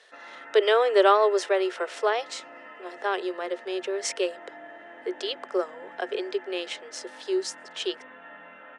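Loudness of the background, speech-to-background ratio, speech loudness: -45.0 LUFS, 18.5 dB, -26.5 LUFS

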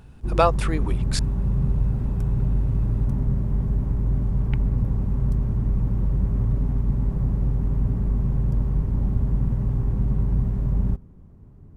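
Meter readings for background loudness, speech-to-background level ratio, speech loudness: -24.5 LUFS, -1.0 dB, -25.5 LUFS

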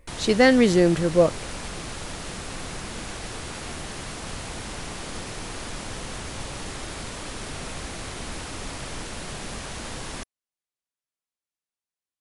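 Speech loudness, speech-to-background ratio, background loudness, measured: -19.0 LUFS, 15.5 dB, -34.5 LUFS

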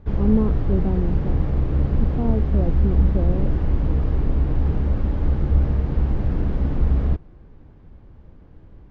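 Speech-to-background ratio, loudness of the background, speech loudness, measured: -4.0 dB, -22.5 LUFS, -26.5 LUFS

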